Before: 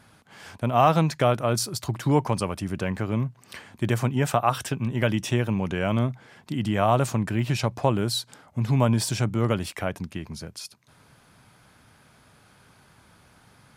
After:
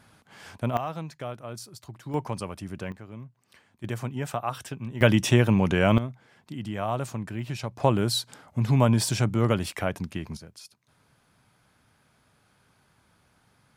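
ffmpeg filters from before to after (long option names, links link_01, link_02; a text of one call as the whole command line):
ffmpeg -i in.wav -af "asetnsamples=nb_out_samples=441:pad=0,asendcmd='0.77 volume volume -14.5dB;2.14 volume volume -7dB;2.92 volume volume -16dB;3.84 volume volume -8dB;5.01 volume volume 4.5dB;5.98 volume volume -8dB;7.8 volume volume 0.5dB;10.37 volume volume -8.5dB',volume=-2dB" out.wav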